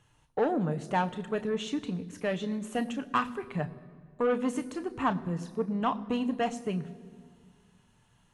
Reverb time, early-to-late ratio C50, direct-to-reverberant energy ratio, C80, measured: 1.9 s, 17.0 dB, 9.5 dB, 18.0 dB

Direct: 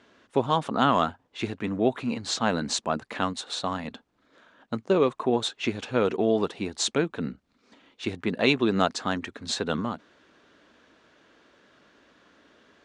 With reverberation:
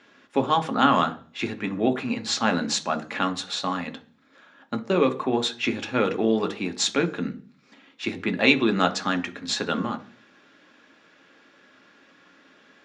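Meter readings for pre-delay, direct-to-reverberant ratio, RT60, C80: 3 ms, 7.0 dB, 0.40 s, 21.5 dB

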